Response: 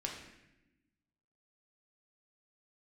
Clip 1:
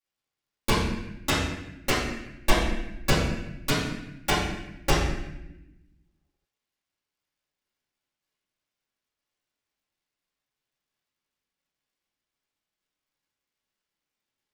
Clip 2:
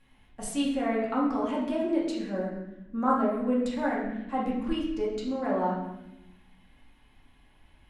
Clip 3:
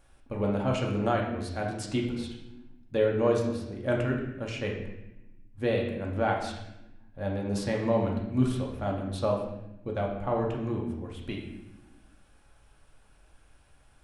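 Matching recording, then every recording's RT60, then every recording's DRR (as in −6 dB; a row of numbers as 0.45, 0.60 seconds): 3; 0.95, 0.95, 0.95 seconds; −11.0, −6.0, −1.0 decibels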